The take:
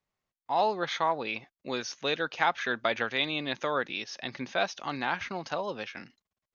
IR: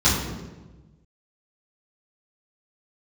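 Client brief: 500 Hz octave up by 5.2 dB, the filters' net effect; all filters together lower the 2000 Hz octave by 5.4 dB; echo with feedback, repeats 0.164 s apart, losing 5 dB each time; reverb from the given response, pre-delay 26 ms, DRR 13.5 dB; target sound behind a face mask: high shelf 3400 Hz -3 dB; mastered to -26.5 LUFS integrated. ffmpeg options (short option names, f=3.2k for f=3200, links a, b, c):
-filter_complex "[0:a]equalizer=f=500:t=o:g=7,equalizer=f=2k:t=o:g=-7,aecho=1:1:164|328|492|656|820|984|1148:0.562|0.315|0.176|0.0988|0.0553|0.031|0.0173,asplit=2[a][b];[1:a]atrim=start_sample=2205,adelay=26[c];[b][c]afir=irnorm=-1:irlink=0,volume=-32dB[d];[a][d]amix=inputs=2:normalize=0,highshelf=f=3.4k:g=-3,volume=1.5dB"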